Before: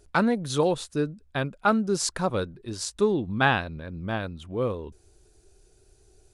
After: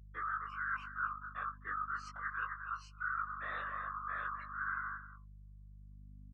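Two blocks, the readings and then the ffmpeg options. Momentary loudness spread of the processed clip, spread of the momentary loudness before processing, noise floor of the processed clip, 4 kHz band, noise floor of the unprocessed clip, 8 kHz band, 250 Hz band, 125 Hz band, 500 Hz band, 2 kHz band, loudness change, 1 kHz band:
19 LU, 11 LU, -54 dBFS, -26.0 dB, -61 dBFS, under -30 dB, -34.0 dB, -22.0 dB, -34.0 dB, -7.5 dB, -13.0 dB, -9.0 dB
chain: -filter_complex "[0:a]afftfilt=real='real(if(lt(b,960),b+48*(1-2*mod(floor(b/48),2)),b),0)':imag='imag(if(lt(b,960),b+48*(1-2*mod(floor(b/48),2)),b),0)':win_size=2048:overlap=0.75,asplit=2[a][b];[b]asoftclip=type=tanh:threshold=-23.5dB,volume=-11dB[c];[a][c]amix=inputs=2:normalize=0,agate=range=-27dB:threshold=-46dB:ratio=16:detection=peak,afftfilt=real='hypot(re,im)*cos(2*PI*random(0))':imag='hypot(re,im)*sin(2*PI*random(1))':win_size=512:overlap=0.75,asplit=2[d][e];[e]adelay=260,highpass=300,lowpass=3.4k,asoftclip=type=hard:threshold=-22dB,volume=-15dB[f];[d][f]amix=inputs=2:normalize=0,areverse,acompressor=threshold=-36dB:ratio=12,areverse,bandpass=f=1.4k:t=q:w=1.9:csg=0,aeval=exprs='val(0)+0.00126*(sin(2*PI*50*n/s)+sin(2*PI*2*50*n/s)/2+sin(2*PI*3*50*n/s)/3+sin(2*PI*4*50*n/s)/4+sin(2*PI*5*50*n/s)/5)':c=same,acompressor=mode=upward:threshold=-53dB:ratio=2.5,flanger=delay=18:depth=2.9:speed=0.36,afftdn=nr=17:nf=-64,volume=4.5dB"

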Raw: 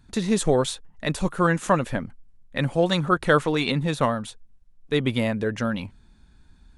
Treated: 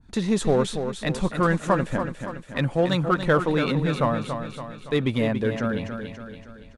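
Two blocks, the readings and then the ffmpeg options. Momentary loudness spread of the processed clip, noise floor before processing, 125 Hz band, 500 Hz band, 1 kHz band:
14 LU, -55 dBFS, +1.0 dB, 0.0 dB, -1.0 dB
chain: -filter_complex "[0:a]highshelf=f=6.7k:g=-7.5,asplit=2[a][b];[b]asoftclip=type=hard:threshold=-20dB,volume=-5.5dB[c];[a][c]amix=inputs=2:normalize=0,aecho=1:1:283|566|849|1132|1415|1698:0.398|0.199|0.0995|0.0498|0.0249|0.0124,adynamicequalizer=threshold=0.0251:dfrequency=1700:dqfactor=0.7:tfrequency=1700:tqfactor=0.7:attack=5:release=100:ratio=0.375:range=2.5:mode=cutabove:tftype=highshelf,volume=-3dB"

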